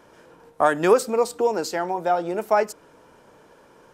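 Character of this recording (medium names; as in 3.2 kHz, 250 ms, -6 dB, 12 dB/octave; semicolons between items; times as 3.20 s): noise floor -54 dBFS; spectral tilt -4.0 dB/octave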